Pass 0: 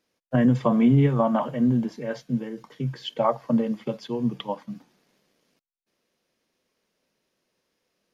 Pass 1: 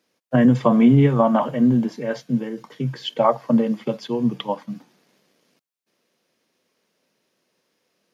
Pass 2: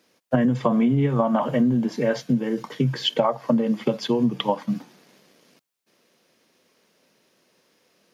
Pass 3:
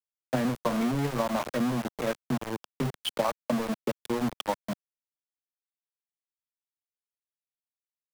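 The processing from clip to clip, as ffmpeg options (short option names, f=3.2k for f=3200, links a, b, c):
-af "highpass=120,volume=5dB"
-af "acompressor=threshold=-24dB:ratio=10,volume=7dB"
-filter_complex "[0:a]aeval=exprs='val(0)*gte(abs(val(0)),0.0891)':c=same,acrossover=split=190|1100|3200[a][b][c][d];[b]crystalizer=i=9:c=0[e];[a][e][c][d]amix=inputs=4:normalize=0,volume=-8dB"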